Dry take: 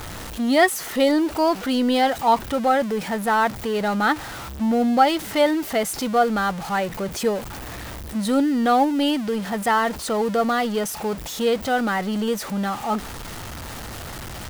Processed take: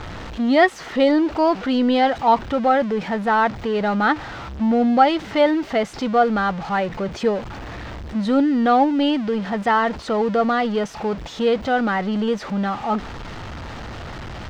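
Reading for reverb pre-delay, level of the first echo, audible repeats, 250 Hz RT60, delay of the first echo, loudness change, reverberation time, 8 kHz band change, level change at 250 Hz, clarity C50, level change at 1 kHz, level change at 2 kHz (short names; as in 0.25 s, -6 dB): none, none, none, none, none, +1.5 dB, none, under -10 dB, +2.5 dB, none, +2.0 dB, +1.0 dB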